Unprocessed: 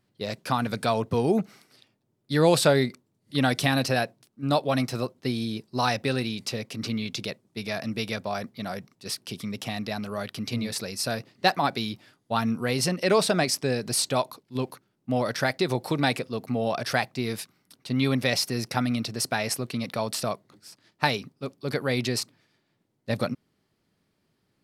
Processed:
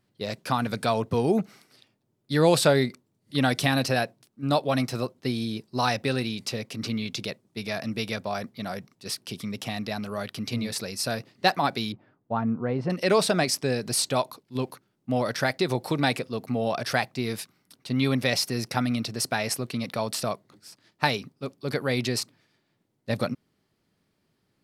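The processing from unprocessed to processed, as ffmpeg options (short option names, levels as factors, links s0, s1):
-filter_complex "[0:a]asettb=1/sr,asplit=3[s0][s1][s2];[s0]atrim=end=11.924[s3];[s1]atrim=start=11.92:end=12.9,asetpts=PTS-STARTPTS,afade=t=in:d=0.004:c=qsin,afade=t=out:st=0.976:d=0.004:c=qsin,lowpass=1100[s4];[s2]atrim=start=12.896[s5];[s3][s4]acrossfade=d=0.004:c1=hsin:c2=qsin[s6];[s6][s5]acrossfade=d=0.004:c1=qsin:c2=hsin"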